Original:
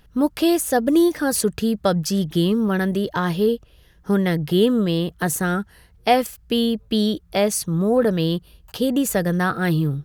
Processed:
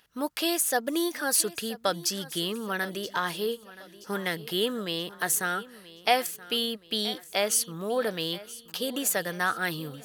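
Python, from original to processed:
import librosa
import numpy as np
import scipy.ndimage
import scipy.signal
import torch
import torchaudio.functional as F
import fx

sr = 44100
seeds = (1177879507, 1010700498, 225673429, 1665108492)

p1 = fx.highpass(x, sr, hz=1400.0, slope=6)
y = p1 + fx.echo_feedback(p1, sr, ms=976, feedback_pct=48, wet_db=-18.0, dry=0)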